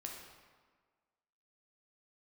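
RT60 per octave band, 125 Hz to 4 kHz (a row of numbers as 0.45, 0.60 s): 1.4, 1.5, 1.6, 1.6, 1.3, 1.0 s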